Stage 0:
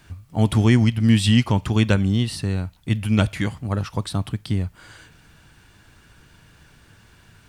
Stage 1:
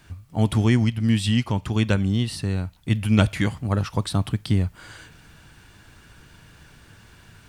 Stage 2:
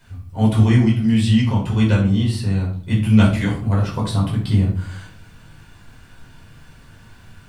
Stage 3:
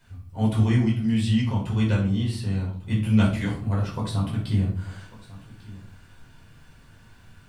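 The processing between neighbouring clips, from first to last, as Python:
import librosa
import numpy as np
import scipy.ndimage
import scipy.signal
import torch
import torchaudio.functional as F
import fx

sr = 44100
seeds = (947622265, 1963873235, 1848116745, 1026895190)

y1 = fx.rider(x, sr, range_db=5, speed_s=2.0)
y1 = y1 * 10.0 ** (-2.5 / 20.0)
y2 = fx.room_shoebox(y1, sr, seeds[0], volume_m3=430.0, walls='furnished', distance_m=4.9)
y2 = y2 * 10.0 ** (-6.0 / 20.0)
y3 = y2 + 10.0 ** (-19.0 / 20.0) * np.pad(y2, (int(1147 * sr / 1000.0), 0))[:len(y2)]
y3 = y3 * 10.0 ** (-6.5 / 20.0)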